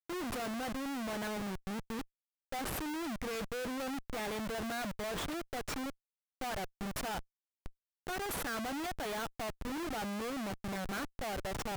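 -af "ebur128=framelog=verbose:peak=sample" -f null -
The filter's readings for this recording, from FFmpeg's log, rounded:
Integrated loudness:
  I:         -38.8 LUFS
  Threshold: -49.1 LUFS
Loudness range:
  LRA:         2.4 LU
  Threshold: -59.3 LUFS
  LRA low:   -40.7 LUFS
  LRA high:  -38.3 LUFS
Sample peak:
  Peak:      -31.0 dBFS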